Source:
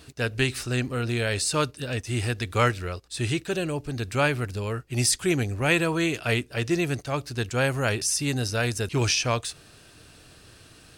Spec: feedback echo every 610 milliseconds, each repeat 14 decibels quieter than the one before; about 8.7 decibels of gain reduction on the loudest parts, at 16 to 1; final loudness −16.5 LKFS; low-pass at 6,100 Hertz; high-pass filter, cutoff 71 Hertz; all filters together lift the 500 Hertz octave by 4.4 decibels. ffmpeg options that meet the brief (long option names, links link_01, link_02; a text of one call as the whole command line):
ffmpeg -i in.wav -af "highpass=71,lowpass=6100,equalizer=frequency=500:width_type=o:gain=5.5,acompressor=threshold=-24dB:ratio=16,aecho=1:1:610|1220:0.2|0.0399,volume=13dB" out.wav